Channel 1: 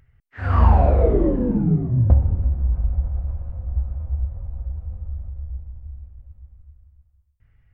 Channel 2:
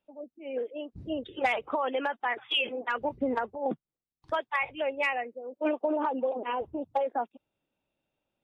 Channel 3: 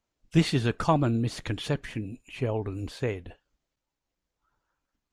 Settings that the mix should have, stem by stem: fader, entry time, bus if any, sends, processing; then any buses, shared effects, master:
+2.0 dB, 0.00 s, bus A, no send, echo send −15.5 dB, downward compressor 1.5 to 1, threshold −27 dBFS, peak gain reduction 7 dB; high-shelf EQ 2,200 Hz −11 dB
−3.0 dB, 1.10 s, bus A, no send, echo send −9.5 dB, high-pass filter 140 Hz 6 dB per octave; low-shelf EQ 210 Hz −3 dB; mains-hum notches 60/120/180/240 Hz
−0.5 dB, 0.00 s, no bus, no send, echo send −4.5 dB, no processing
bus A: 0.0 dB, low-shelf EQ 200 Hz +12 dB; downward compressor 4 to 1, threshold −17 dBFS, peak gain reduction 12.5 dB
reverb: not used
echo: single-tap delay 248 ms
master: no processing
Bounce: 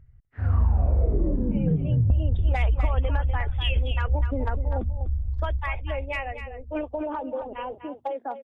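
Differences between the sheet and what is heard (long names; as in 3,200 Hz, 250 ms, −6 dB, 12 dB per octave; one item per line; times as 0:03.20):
stem 1 +2.0 dB → −6.5 dB
stem 3: muted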